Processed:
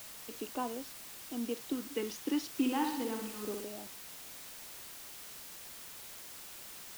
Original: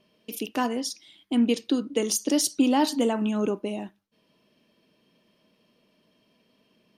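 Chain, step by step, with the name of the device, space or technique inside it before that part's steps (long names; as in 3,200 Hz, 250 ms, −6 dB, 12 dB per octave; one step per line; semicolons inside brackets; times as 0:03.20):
shortwave radio (band-pass filter 280–2,500 Hz; amplitude tremolo 0.43 Hz, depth 60%; auto-filter notch square 0.29 Hz 610–1,900 Hz; white noise bed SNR 8 dB)
0:02.48–0:03.64: flutter between parallel walls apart 10.7 metres, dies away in 0.8 s
level −5 dB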